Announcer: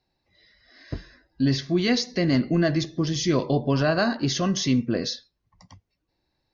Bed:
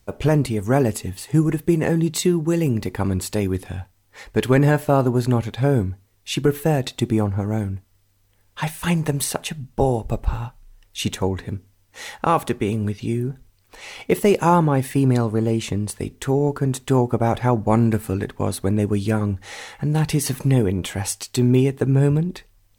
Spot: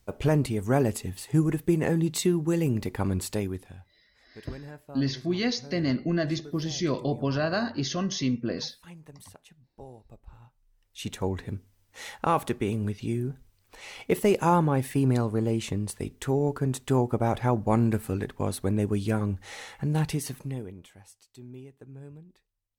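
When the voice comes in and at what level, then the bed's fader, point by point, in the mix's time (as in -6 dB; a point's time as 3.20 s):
3.55 s, -5.0 dB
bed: 3.32 s -5.5 dB
4.20 s -27 dB
10.28 s -27 dB
11.31 s -6 dB
20.01 s -6 dB
21.05 s -28 dB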